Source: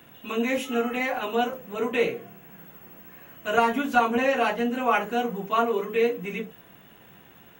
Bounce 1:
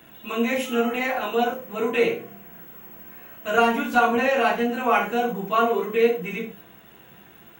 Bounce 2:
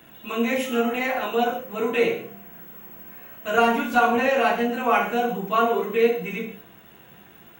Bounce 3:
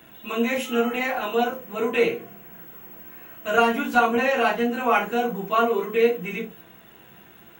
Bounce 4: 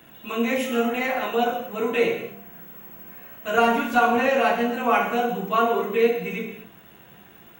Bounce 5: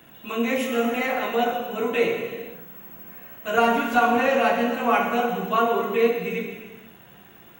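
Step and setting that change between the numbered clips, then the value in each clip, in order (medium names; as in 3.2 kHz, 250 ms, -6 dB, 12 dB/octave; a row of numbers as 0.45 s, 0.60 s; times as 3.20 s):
gated-style reverb, gate: 130 ms, 190 ms, 80 ms, 280 ms, 530 ms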